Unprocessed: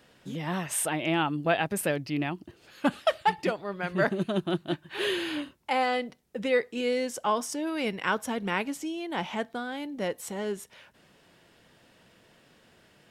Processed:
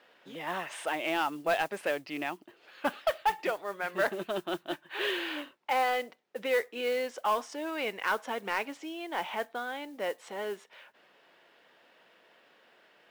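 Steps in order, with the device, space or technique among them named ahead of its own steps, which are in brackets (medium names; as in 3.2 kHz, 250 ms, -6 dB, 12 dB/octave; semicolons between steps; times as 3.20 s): carbon microphone (band-pass 480–3300 Hz; saturation -20 dBFS, distortion -15 dB; modulation noise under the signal 22 dB); trim +1 dB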